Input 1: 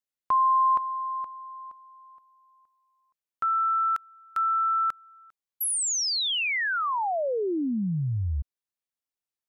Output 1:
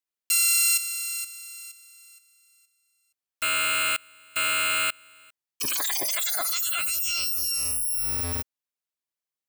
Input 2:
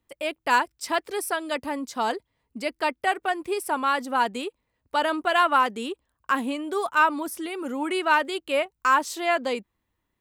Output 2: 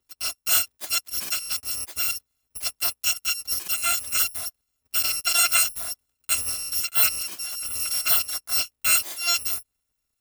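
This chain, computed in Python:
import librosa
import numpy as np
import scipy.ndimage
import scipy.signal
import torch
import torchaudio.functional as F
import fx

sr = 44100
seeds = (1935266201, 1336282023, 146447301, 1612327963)

y = fx.bit_reversed(x, sr, seeds[0], block=256)
y = fx.low_shelf(y, sr, hz=260.0, db=-4.5)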